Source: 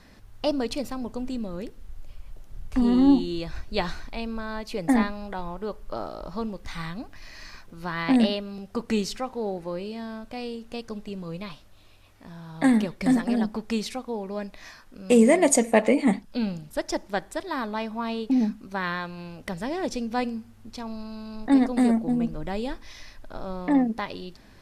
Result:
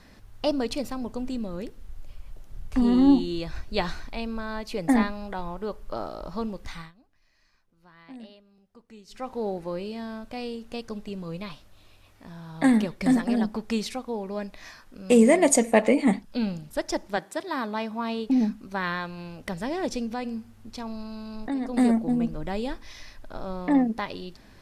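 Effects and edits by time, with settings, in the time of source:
6.66–9.33 s: dip -23.5 dB, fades 0.26 s
17.16–18.27 s: high-pass 150 Hz -> 61 Hz 24 dB/octave
20.06–21.74 s: compression 3:1, threshold -28 dBFS

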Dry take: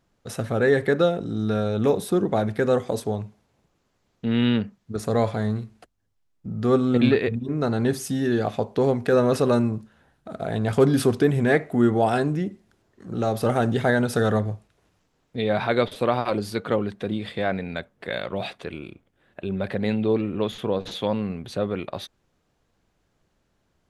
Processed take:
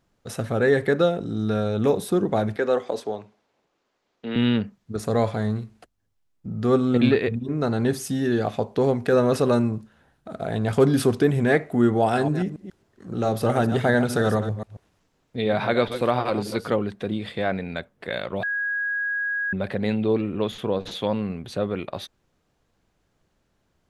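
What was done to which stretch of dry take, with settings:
2.56–4.36 s: three-band isolator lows -18 dB, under 270 Hz, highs -12 dB, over 6.1 kHz
12.01–16.74 s: chunks repeated in reverse 138 ms, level -10 dB
18.43–19.53 s: bleep 1.65 kHz -23 dBFS

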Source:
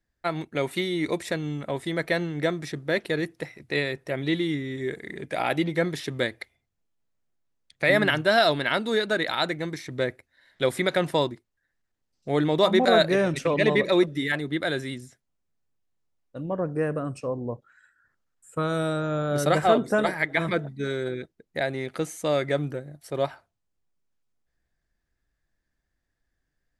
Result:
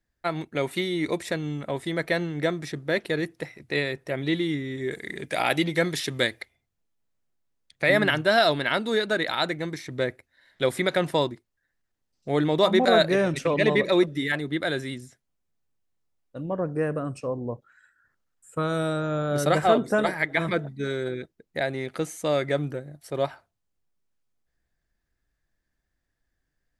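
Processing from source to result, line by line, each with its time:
4.91–6.41 s: treble shelf 2.2 kHz +8.5 dB

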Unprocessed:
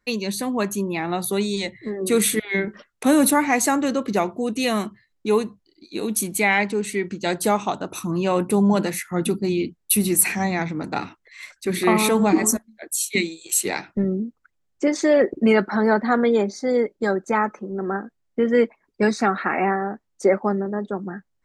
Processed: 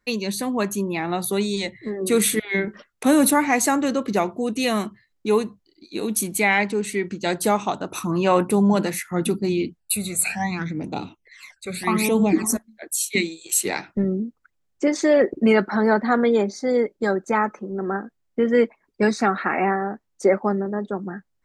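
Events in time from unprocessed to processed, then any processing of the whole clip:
7.94–8.50 s: peaking EQ 1.2 kHz +5.5 dB 2.6 oct
9.79–12.49 s: phase shifter stages 12, 0.37 Hz -> 1.3 Hz, lowest notch 300–1800 Hz

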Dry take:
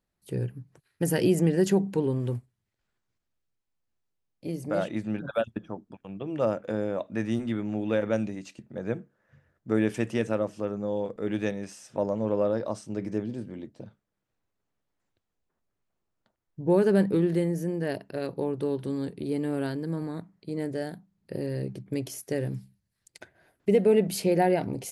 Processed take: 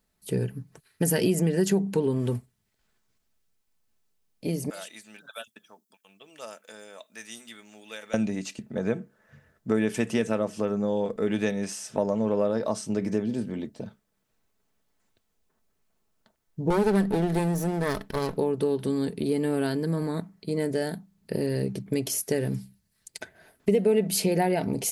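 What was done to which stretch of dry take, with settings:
4.70–8.14 s: differentiator
16.70–18.38 s: comb filter that takes the minimum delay 0.53 ms
whole clip: treble shelf 4 kHz +6 dB; comb 4.6 ms, depth 34%; compression 2.5:1, threshold -29 dBFS; trim +6 dB

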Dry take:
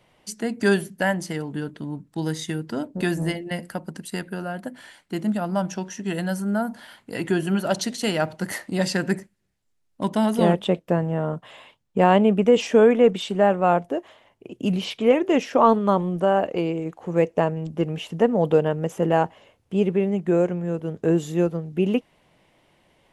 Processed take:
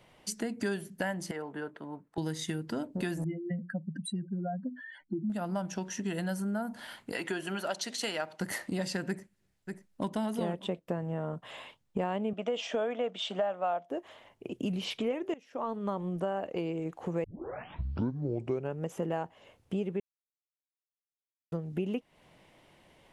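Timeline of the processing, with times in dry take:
1.31–2.18 s: three-band isolator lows -18 dB, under 420 Hz, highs -15 dB, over 2.1 kHz
3.24–5.30 s: spectral contrast enhancement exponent 3.3
7.12–8.41 s: frequency weighting A
9.08–10.13 s: echo throw 590 ms, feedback 10%, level -16.5 dB
12.33–13.90 s: cabinet simulation 310–7300 Hz, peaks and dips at 390 Hz -8 dB, 660 Hz +10 dB, 1.3 kHz +4 dB, 3.3 kHz +8 dB
15.34–16.07 s: fade in quadratic, from -22 dB
17.24 s: tape start 1.57 s
20.00–21.52 s: mute
whole clip: compression 4:1, threshold -32 dBFS

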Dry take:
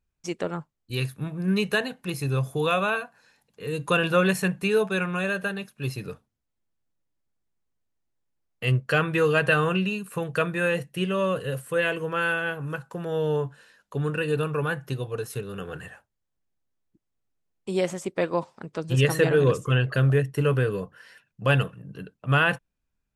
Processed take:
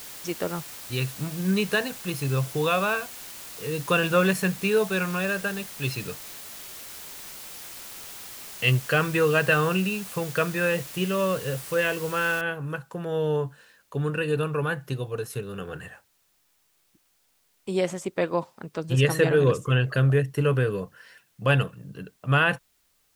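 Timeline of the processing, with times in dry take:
5.82–8.83 s: peaking EQ 3.3 kHz +7.5 dB 1.8 oct
12.41 s: noise floor step -41 dB -68 dB

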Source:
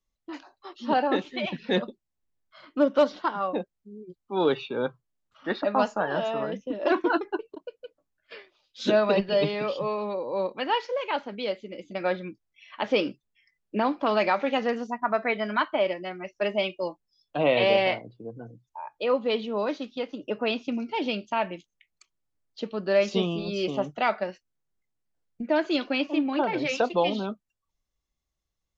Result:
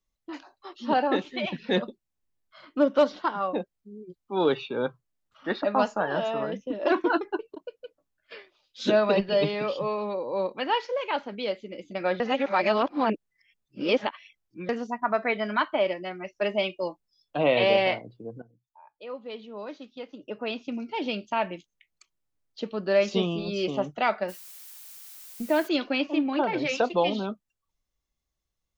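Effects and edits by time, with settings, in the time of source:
12.20–14.69 s: reverse
18.42–21.38 s: fade in quadratic, from -15.5 dB
24.28–25.67 s: added noise blue -46 dBFS

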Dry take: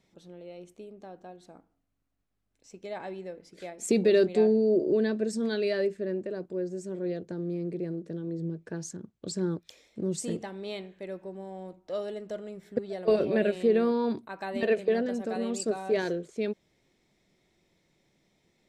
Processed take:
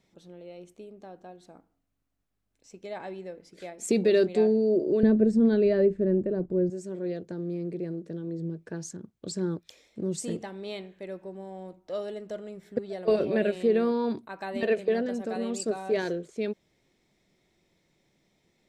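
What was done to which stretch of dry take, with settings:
5.03–6.70 s: tilt EQ -4.5 dB/octave

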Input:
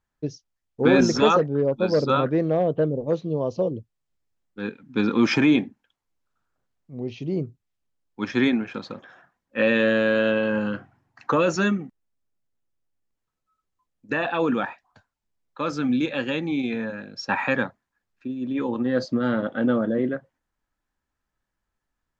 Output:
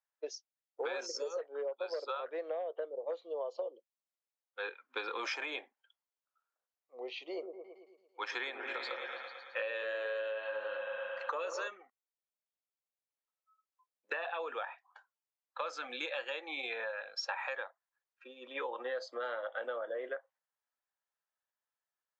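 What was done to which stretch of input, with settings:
1.06–1.38 s: time-frequency box 600–4200 Hz -19 dB
7.31–11.68 s: delay with an opening low-pass 111 ms, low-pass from 750 Hz, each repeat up 1 oct, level -6 dB
whole clip: steep high-pass 480 Hz 36 dB/octave; spectral noise reduction 12 dB; compression 12:1, threshold -36 dBFS; trim +1 dB

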